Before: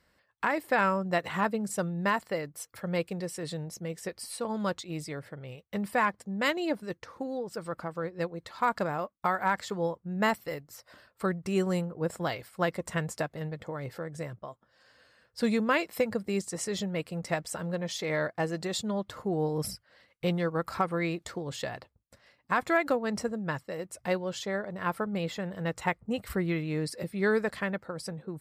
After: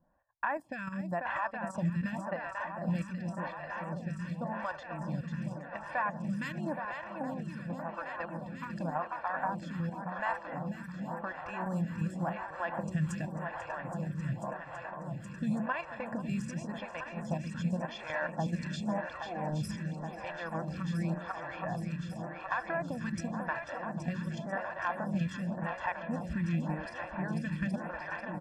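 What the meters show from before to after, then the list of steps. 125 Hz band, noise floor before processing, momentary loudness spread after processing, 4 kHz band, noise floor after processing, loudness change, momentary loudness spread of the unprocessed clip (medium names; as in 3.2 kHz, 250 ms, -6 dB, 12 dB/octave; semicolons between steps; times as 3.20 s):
+0.5 dB, -71 dBFS, 6 LU, -11.0 dB, -46 dBFS, -4.5 dB, 11 LU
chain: graphic EQ with 31 bands 160 Hz +4 dB, 1.25 kHz +9 dB, 4 kHz -10 dB; level held to a coarse grid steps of 10 dB; peaking EQ 12 kHz -8 dB 1.4 oct; compression 2.5:1, threshold -35 dBFS, peak gain reduction 11 dB; level-controlled noise filter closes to 630 Hz, open at -33 dBFS; comb 1.2 ms, depth 92%; shuffle delay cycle 821 ms, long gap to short 1.5:1, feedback 79%, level -7.5 dB; lamp-driven phase shifter 0.9 Hz; trim +2.5 dB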